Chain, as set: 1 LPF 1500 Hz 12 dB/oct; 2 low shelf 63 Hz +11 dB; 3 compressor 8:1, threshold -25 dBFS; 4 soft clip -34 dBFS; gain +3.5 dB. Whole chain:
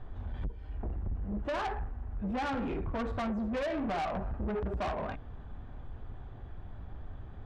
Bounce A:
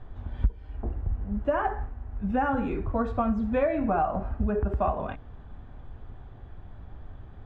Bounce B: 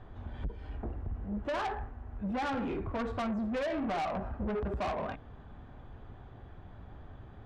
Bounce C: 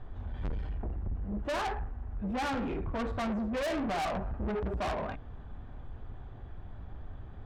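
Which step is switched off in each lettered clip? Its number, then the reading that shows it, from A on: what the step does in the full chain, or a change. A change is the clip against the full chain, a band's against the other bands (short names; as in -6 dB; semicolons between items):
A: 4, distortion -7 dB; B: 2, 125 Hz band -2.5 dB; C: 3, mean gain reduction 3.0 dB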